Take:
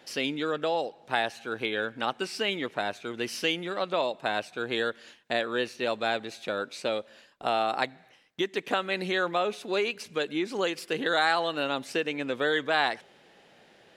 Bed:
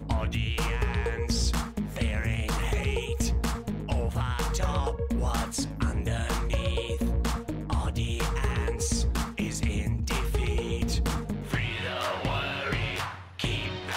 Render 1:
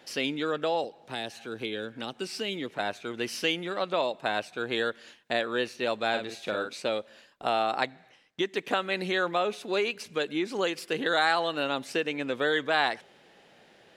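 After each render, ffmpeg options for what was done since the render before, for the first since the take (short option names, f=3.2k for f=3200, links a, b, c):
-filter_complex "[0:a]asettb=1/sr,asplit=3[a][b][c];[a]atrim=end=0.844[d];[b]atrim=start=0.84:end=2.79,asetpts=PTS-STARTPTS,afade=t=in:d=0.004:c=qsin,afade=t=out:st=1.946:d=0.004:c=qsin,acrossover=split=470|3000[e][f][g];[f]acompressor=threshold=-45dB:ratio=2.5:attack=3.2:release=140:knee=2.83:detection=peak[h];[e][h][g]amix=inputs=3:normalize=0[i];[c]atrim=start=2.786[j];[d][i]acrossfade=d=0.004:c1=hsin:c2=qsin[k];[k][j]acrossfade=d=0.004:c1=qsin:c2=hsin,asettb=1/sr,asplit=3[l][m][n];[l]atrim=end=6.094[o];[m]atrim=start=6.09:end=6.74,asetpts=PTS-STARTPTS,afade=t=in:d=0.004:c=qsin,afade=t=out:st=0.646:d=0.004:c=qsin,asplit=2[p][q];[q]adelay=47,volume=-6.5dB[r];[p][r]amix=inputs=2:normalize=0,atrim=end_sample=28665[s];[n]atrim=start=6.736[t];[o][s]acrossfade=d=0.004:c1=hsin:c2=qsin[u];[u][t]acrossfade=d=0.004:c1=qsin:c2=hsin,asettb=1/sr,asplit=3[v][w][x];[v]atrim=end=7.614[y];[w]atrim=start=7.61:end=8.48,asetpts=PTS-STARTPTS,afade=t=in:d=0.004:c=qsin,afade=t=out:st=0.866:d=0.004:c=qsin,lowpass=10k[z];[x]atrim=start=8.476[aa];[y][z]acrossfade=d=0.004:c1=hsin:c2=qsin[ab];[ab][aa]acrossfade=d=0.004:c1=qsin:c2=hsin"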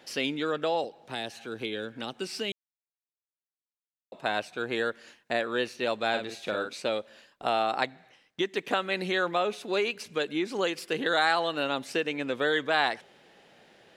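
-filter_complex "[0:a]asettb=1/sr,asplit=3[a][b][c];[a]atrim=end=4.654[d];[b]atrim=start=4.65:end=5.46,asetpts=PTS-STARTPTS,afade=t=in:d=0.004:c=qsin,afade=t=out:st=0.806:d=0.004:c=qsin,equalizer=f=3.4k:t=o:w=0.42:g=-6[e];[c]atrim=start=5.456[f];[d][e]acrossfade=d=0.004:c1=hsin:c2=qsin[g];[g][f]acrossfade=d=0.004:c1=qsin:c2=hsin,asplit=3[h][i][j];[h]atrim=end=2.52,asetpts=PTS-STARTPTS,afade=t=out:st=2.516:d=0.004:c=hsin[k];[i]atrim=start=2.52:end=4.12,asetpts=PTS-STARTPTS,volume=0[l];[j]atrim=start=4.12,asetpts=PTS-STARTPTS,afade=t=in:d=0.004:c=hsin[m];[k][l][m]concat=n=3:v=0:a=1"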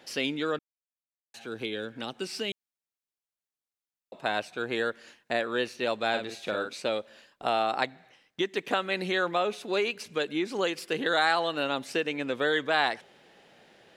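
-filter_complex "[0:a]asplit=3[a][b][c];[a]atrim=end=0.59,asetpts=PTS-STARTPTS,afade=t=out:st=0.586:d=0.004:c=hsin[d];[b]atrim=start=0.59:end=1.34,asetpts=PTS-STARTPTS,volume=0[e];[c]atrim=start=1.34,asetpts=PTS-STARTPTS,afade=t=in:d=0.004:c=hsin[f];[d][e][f]concat=n=3:v=0:a=1"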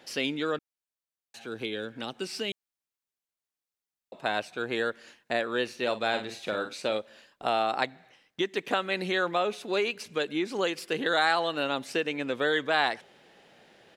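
-filter_complex "[0:a]asplit=3[a][b][c];[a]afade=t=out:st=5.68:d=0.02[d];[b]asplit=2[e][f];[f]adelay=46,volume=-13dB[g];[e][g]amix=inputs=2:normalize=0,afade=t=in:st=5.68:d=0.02,afade=t=out:st=6.97:d=0.02[h];[c]afade=t=in:st=6.97:d=0.02[i];[d][h][i]amix=inputs=3:normalize=0"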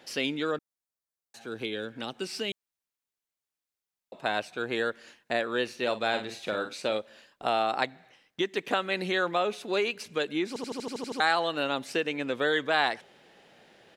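-filter_complex "[0:a]asettb=1/sr,asplit=3[a][b][c];[a]atrim=end=0.514[d];[b]atrim=start=0.51:end=1.47,asetpts=PTS-STARTPTS,afade=t=in:d=0.004:c=qsin,afade=t=out:st=0.956:d=0.004:c=qsin,equalizer=f=2.8k:w=1.5:g=-7[e];[c]atrim=start=1.466[f];[d][e]acrossfade=d=0.004:c1=hsin:c2=qsin[g];[g][f]acrossfade=d=0.004:c1=qsin:c2=hsin,asplit=10[h][i][j][k][l][m][n][o][p][q];[h]atrim=end=10.562[r];[i]atrim=start=10.478:end=10.562[s];[j]atrim=start=10.478:end=10.562[t];[k]atrim=start=10.478:end=10.562[u];[l]atrim=start=10.478:end=10.562[v];[m]atrim=start=10.478:end=10.562[w];[n]atrim=start=10.478:end=10.562[x];[o]atrim=start=10.478:end=10.562[y];[p]atrim=start=10.478:end=10.562[z];[q]atrim=start=11.198[aa];[r][s]acrossfade=d=0.004:c1=hsin:c2=hsin[ab];[ab][t]acrossfade=d=0.004:c1=hsin:c2=hsin[ac];[ac][u]acrossfade=d=0.004:c1=hsin:c2=hsin[ad];[ad][v]acrossfade=d=0.004:c1=hsin:c2=hsin[ae];[ae][w]acrossfade=d=0.004:c1=hsin:c2=hsin[af];[af][x]acrossfade=d=0.004:c1=hsin:c2=hsin[ag];[ag][y]acrossfade=d=0.004:c1=hsin:c2=hsin[ah];[ah][z]acrossfade=d=0.004:c1=hsin:c2=hsin[ai];[ai][aa]acrossfade=d=0.004:c1=hsin:c2=hsin"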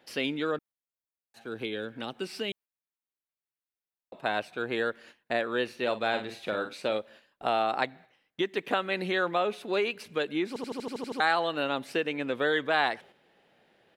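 -af "agate=range=-7dB:threshold=-50dB:ratio=16:detection=peak,equalizer=f=6.5k:t=o:w=1.1:g=-8"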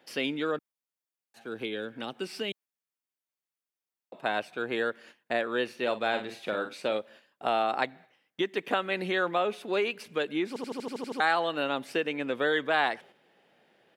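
-af "highpass=130,bandreject=f=4k:w=19"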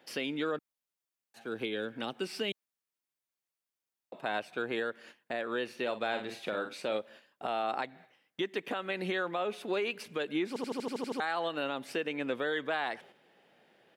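-af "alimiter=limit=-23dB:level=0:latency=1:release=178"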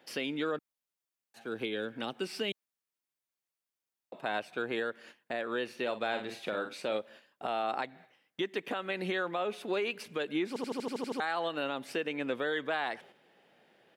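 -af anull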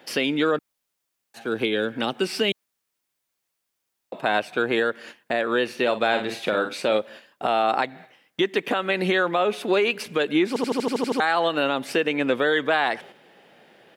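-af "volume=11.5dB"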